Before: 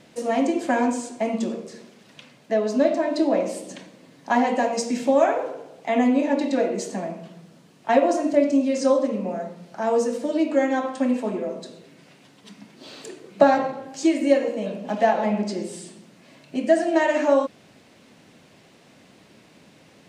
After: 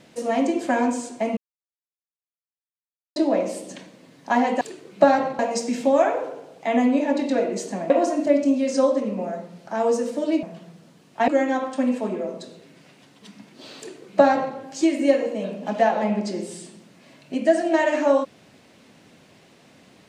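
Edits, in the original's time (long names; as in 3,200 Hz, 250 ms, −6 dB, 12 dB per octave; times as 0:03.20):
0:01.37–0:03.16: silence
0:07.12–0:07.97: move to 0:10.50
0:13.00–0:13.78: duplicate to 0:04.61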